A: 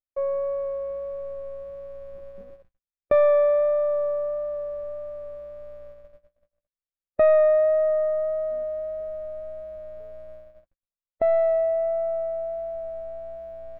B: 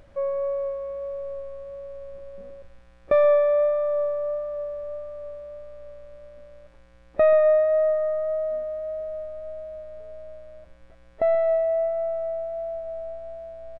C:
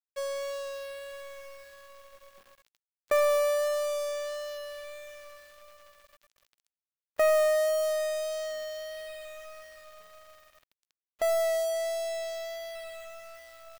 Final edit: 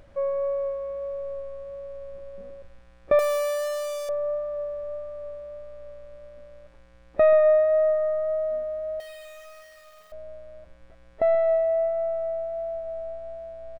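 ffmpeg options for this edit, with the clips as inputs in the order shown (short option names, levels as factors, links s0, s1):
-filter_complex "[2:a]asplit=2[s0][s1];[1:a]asplit=3[s2][s3][s4];[s2]atrim=end=3.192[s5];[s0]atrim=start=3.188:end=4.092[s6];[s3]atrim=start=4.088:end=9.002[s7];[s1]atrim=start=8.998:end=10.122[s8];[s4]atrim=start=10.118[s9];[s5][s6]acrossfade=d=0.004:c1=hsin:c2=hsin[s10];[s10][s7]acrossfade=d=0.004:c1=hsin:c2=hsin[s11];[s11][s8]acrossfade=d=0.004:c1=hsin:c2=hsin[s12];[s12][s9]acrossfade=d=0.004:c1=hsin:c2=hsin"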